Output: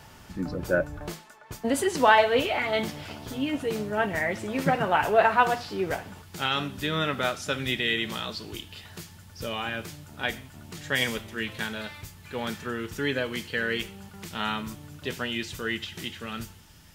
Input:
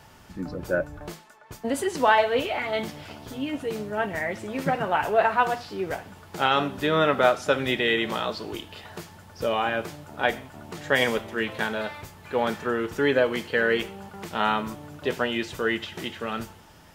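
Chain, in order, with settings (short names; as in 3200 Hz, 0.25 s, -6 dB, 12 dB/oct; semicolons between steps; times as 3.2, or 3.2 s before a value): bell 660 Hz -2.5 dB 2.8 oct, from 6.22 s -13.5 dB; gain +3 dB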